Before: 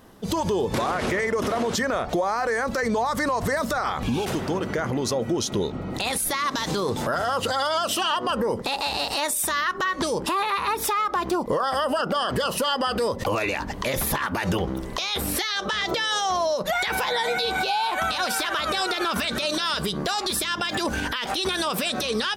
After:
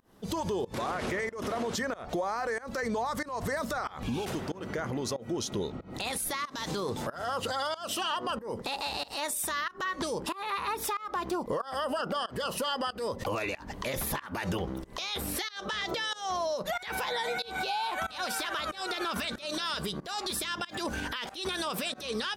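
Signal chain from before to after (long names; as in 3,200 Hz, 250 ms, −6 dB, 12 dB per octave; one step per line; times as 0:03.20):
fake sidechain pumping 93 BPM, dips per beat 1, −23 dB, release 225 ms
level −7.5 dB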